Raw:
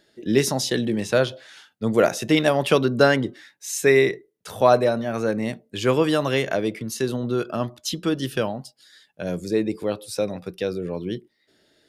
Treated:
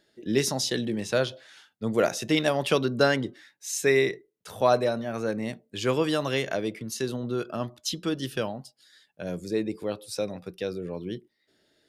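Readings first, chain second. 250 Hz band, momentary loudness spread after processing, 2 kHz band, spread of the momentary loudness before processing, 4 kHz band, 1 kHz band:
-5.5 dB, 12 LU, -4.5 dB, 12 LU, -2.5 dB, -5.5 dB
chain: dynamic EQ 5100 Hz, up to +4 dB, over -38 dBFS, Q 0.77; gain -5.5 dB

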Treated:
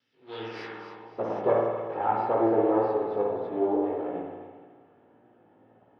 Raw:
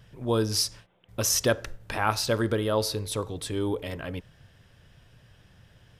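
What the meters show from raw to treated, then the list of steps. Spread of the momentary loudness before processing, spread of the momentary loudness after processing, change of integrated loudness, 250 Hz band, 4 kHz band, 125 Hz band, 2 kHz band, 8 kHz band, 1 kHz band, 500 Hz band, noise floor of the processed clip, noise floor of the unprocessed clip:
11 LU, 17 LU, +0.5 dB, +1.5 dB, under -15 dB, -12.0 dB, -9.0 dB, under -40 dB, +4.5 dB, +3.5 dB, -61 dBFS, -59 dBFS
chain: minimum comb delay 2.3 ms; HPF 95 Hz; bell 240 Hz +12 dB 1.9 oct; spring tank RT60 1.5 s, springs 53 ms, chirp 65 ms, DRR -1.5 dB; chorus 1.7 Hz, delay 16.5 ms, depth 3.1 ms; band-pass sweep 5700 Hz -> 710 Hz, 0.1–1.19; air absorption 320 m; on a send: thin delay 0.27 s, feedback 31%, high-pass 1700 Hz, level -10 dB; on the sum: gain +7 dB

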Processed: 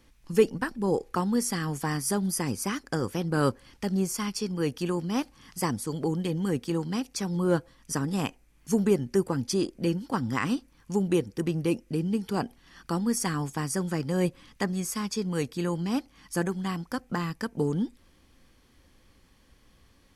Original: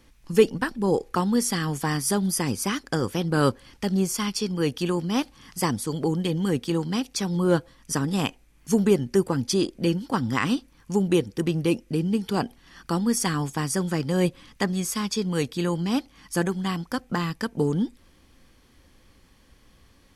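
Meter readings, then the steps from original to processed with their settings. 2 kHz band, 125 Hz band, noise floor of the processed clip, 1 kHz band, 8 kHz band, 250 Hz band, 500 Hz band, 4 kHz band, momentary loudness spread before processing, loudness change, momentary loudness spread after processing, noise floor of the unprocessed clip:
-4.0 dB, -3.5 dB, -61 dBFS, -3.5 dB, -4.0 dB, -3.5 dB, -3.5 dB, -6.5 dB, 6 LU, -3.5 dB, 6 LU, -58 dBFS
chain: dynamic EQ 3500 Hz, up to -6 dB, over -49 dBFS, Q 2.3; gain -3.5 dB

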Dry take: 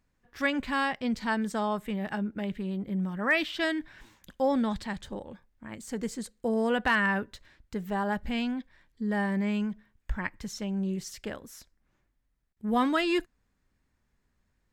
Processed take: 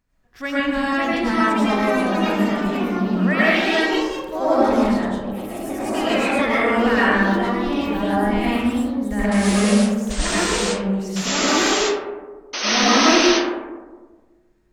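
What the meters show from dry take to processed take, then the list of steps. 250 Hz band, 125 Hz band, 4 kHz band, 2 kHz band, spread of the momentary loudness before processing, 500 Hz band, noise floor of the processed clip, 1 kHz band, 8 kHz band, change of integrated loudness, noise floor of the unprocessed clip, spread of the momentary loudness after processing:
+11.5 dB, +10.0 dB, +16.5 dB, +10.5 dB, 14 LU, +12.5 dB, -56 dBFS, +12.0 dB, +21.0 dB, +11.0 dB, -75 dBFS, 9 LU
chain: painted sound noise, 12.53–13.27, 240–6400 Hz -25 dBFS; echoes that change speed 0.621 s, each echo +3 st, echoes 3; digital reverb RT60 1.4 s, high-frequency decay 0.3×, pre-delay 65 ms, DRR -8.5 dB; gain -1 dB

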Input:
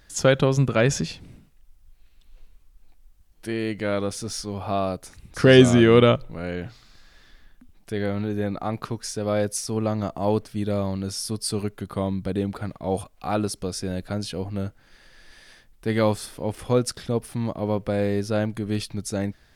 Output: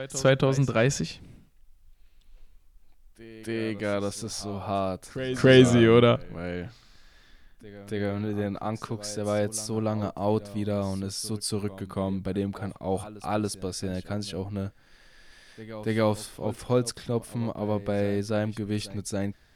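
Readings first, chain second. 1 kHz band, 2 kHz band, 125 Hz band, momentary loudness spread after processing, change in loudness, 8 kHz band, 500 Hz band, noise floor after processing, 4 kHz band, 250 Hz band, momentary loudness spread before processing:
-3.0 dB, -3.0 dB, -3.0 dB, 13 LU, -3.0 dB, -3.0 dB, -3.0 dB, -58 dBFS, -3.0 dB, -3.0 dB, 13 LU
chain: vibrato 0.31 Hz 7.2 cents; reverse echo 0.282 s -15.5 dB; gain -3 dB

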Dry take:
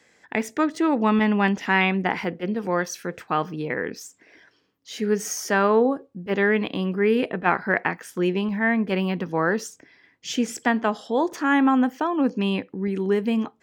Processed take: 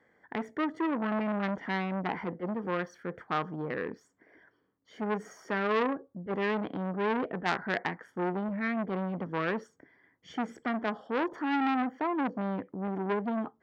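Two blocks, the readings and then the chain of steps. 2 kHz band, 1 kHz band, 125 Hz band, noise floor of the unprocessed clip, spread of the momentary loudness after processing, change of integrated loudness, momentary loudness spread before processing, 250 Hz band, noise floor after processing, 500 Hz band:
-10.0 dB, -7.5 dB, -8.5 dB, -63 dBFS, 8 LU, -9.0 dB, 9 LU, -9.5 dB, -72 dBFS, -9.5 dB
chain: polynomial smoothing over 41 samples; core saturation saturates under 2200 Hz; gain -4.5 dB

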